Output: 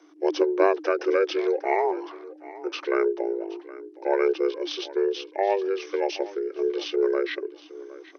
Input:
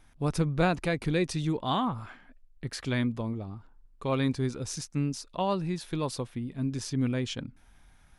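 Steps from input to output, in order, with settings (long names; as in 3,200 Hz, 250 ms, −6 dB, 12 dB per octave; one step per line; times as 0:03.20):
repeating echo 767 ms, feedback 20%, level −18 dB
pitch shifter −11 semitones
frequency shifter +290 Hz
level +5 dB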